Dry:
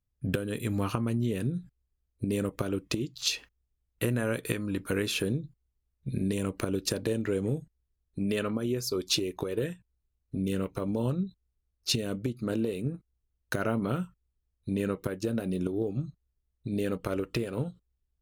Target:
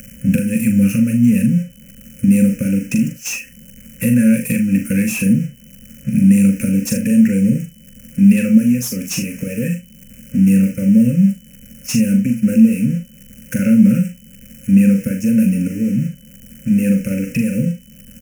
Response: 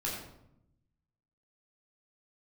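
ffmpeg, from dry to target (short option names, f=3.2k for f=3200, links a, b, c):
-filter_complex "[0:a]aeval=exprs='val(0)+0.5*0.0126*sgn(val(0))':c=same,equalizer=f=360:t=o:w=1.5:g=9.5,acompressor=mode=upward:threshold=-28dB:ratio=2.5,agate=range=-12dB:threshold=-30dB:ratio=16:detection=peak,aecho=1:1:41|76:0.501|0.158,aeval=exprs='val(0)+0.002*sin(2*PI*3000*n/s)':c=same,firequalizer=gain_entry='entry(100,0);entry(220,15);entry(370,-28);entry(530,10);entry(760,-29);entry(1500,8);entry(2600,13);entry(3700,-29);entry(5500,10);entry(13000,14)':delay=0.05:min_phase=1,acrossover=split=450|1900[a][b][c];[b]acompressor=threshold=-51dB:ratio=6[d];[c]asoftclip=type=tanh:threshold=-22.5dB[e];[a][d][e]amix=inputs=3:normalize=0,volume=3dB"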